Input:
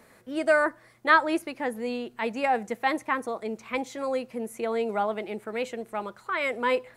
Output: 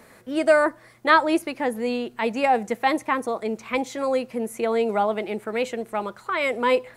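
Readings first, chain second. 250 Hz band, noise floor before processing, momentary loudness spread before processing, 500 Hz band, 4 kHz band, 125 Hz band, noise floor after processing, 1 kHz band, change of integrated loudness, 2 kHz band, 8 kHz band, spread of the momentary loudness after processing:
+5.5 dB, -57 dBFS, 12 LU, +5.5 dB, +5.0 dB, no reading, -52 dBFS, +4.0 dB, +4.0 dB, +1.5 dB, +5.5 dB, 10 LU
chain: dynamic bell 1.6 kHz, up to -5 dB, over -37 dBFS, Q 1.7; trim +5.5 dB

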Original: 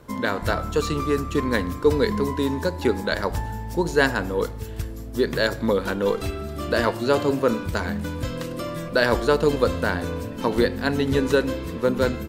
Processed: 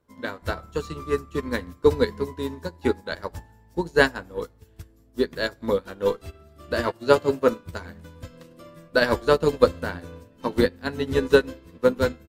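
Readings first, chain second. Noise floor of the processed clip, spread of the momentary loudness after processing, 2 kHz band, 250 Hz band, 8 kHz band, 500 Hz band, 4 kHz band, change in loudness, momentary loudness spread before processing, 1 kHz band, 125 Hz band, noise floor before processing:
-56 dBFS, 18 LU, -2.0 dB, -4.5 dB, -6.0 dB, -0.5 dB, -2.5 dB, -1.0 dB, 10 LU, -3.0 dB, -6.0 dB, -34 dBFS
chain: doubling 12 ms -9 dB; upward expansion 2.5:1, over -31 dBFS; trim +4 dB

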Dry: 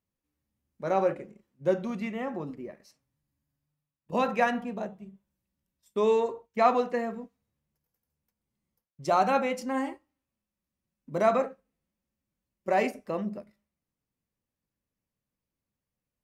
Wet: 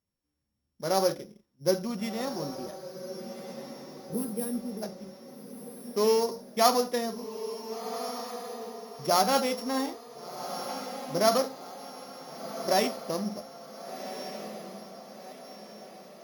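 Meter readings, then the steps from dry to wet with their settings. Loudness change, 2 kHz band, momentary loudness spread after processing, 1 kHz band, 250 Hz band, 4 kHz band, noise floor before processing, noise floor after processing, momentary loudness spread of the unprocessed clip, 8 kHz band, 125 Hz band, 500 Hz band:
-1.5 dB, -3.5 dB, 20 LU, -1.0 dB, +0.5 dB, +12.5 dB, under -85 dBFS, -79 dBFS, 14 LU, +15.0 dB, +0.5 dB, 0.0 dB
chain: sorted samples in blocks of 8 samples; time-frequency box 4.05–4.82 s, 490–8100 Hz -23 dB; echo that smears into a reverb 1454 ms, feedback 48%, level -10 dB

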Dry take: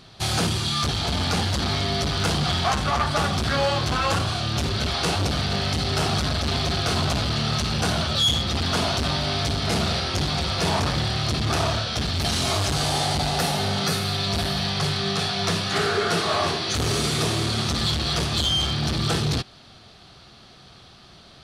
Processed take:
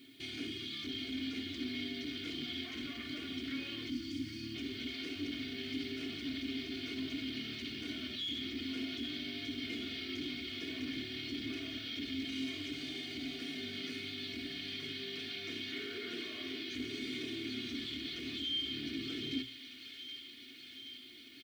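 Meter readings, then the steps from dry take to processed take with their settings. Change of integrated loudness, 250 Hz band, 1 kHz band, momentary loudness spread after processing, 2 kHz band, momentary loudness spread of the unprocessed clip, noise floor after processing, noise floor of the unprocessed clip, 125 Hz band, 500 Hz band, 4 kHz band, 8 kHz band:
-17.0 dB, -11.0 dB, -33.0 dB, 3 LU, -14.5 dB, 2 LU, -52 dBFS, -49 dBFS, -28.5 dB, -20.5 dB, -15.0 dB, -26.5 dB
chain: time-frequency box 3.89–4.55 s, 360–4300 Hz -28 dB; hum notches 60/120 Hz; comb 2.8 ms, depth 79%; peak limiter -21 dBFS, peak gain reduction 11 dB; flange 0.16 Hz, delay 7.4 ms, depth 1.2 ms, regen +81%; vowel filter i; added noise blue -79 dBFS; feedback echo behind a high-pass 775 ms, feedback 74%, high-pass 1.5 kHz, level -9 dB; trim +7 dB

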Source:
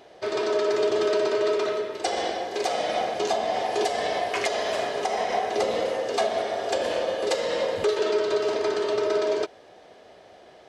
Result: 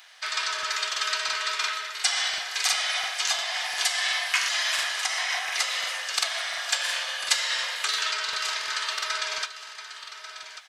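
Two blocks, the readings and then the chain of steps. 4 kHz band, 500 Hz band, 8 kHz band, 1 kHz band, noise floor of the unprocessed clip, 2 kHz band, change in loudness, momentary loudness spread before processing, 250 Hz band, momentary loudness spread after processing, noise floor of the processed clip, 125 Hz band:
+9.0 dB, -21.5 dB, +10.5 dB, -5.0 dB, -51 dBFS, +7.0 dB, 0.0 dB, 5 LU, under -30 dB, 7 LU, -43 dBFS, under -20 dB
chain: high-pass 1.3 kHz 24 dB/octave; treble shelf 7.1 kHz +7.5 dB; delay 1141 ms -12 dB; crackling interface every 0.35 s, samples 2048, repeat, from 0.54 s; trim +7 dB

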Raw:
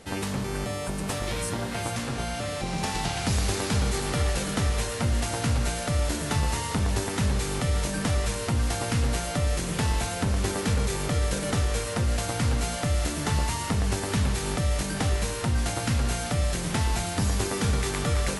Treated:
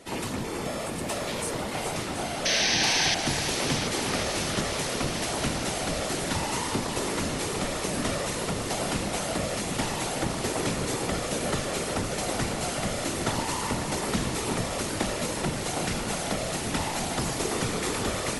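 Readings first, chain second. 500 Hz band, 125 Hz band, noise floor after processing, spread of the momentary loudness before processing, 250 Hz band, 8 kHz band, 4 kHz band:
+1.5 dB, -8.0 dB, -32 dBFS, 4 LU, -0.5 dB, +2.0 dB, +3.5 dB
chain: high-pass 170 Hz 12 dB/octave; band-stop 1.6 kHz, Q 13; whisper effect; painted sound noise, 2.45–3.15 s, 1.5–6.4 kHz -25 dBFS; echo whose repeats swap between lows and highs 365 ms, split 1.9 kHz, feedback 86%, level -8 dB

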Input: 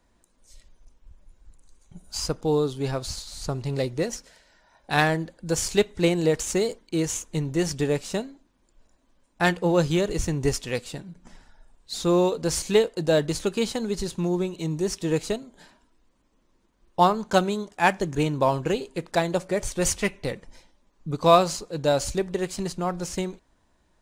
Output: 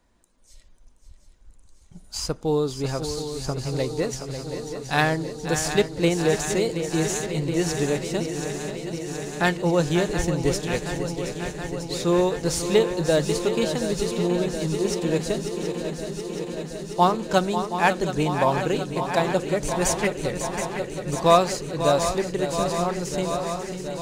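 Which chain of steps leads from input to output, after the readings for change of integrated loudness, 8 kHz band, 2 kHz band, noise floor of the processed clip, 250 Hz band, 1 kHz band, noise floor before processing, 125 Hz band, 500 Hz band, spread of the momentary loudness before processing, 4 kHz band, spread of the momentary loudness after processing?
+0.5 dB, +1.5 dB, +1.5 dB, -51 dBFS, +1.5 dB, +1.5 dB, -66 dBFS, +1.5 dB, +1.5 dB, 10 LU, +1.5 dB, 10 LU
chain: shuffle delay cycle 724 ms, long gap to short 3:1, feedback 76%, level -9.5 dB

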